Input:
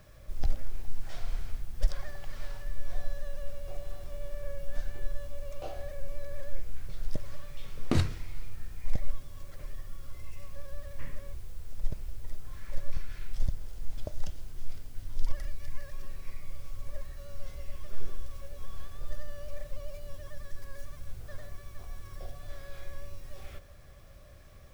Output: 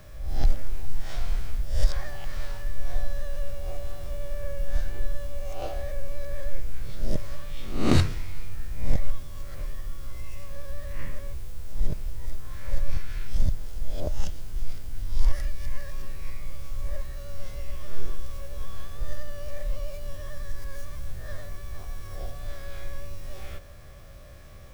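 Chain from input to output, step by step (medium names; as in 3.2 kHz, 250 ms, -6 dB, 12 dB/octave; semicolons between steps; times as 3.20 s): reverse spectral sustain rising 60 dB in 0.56 s; trim +4.5 dB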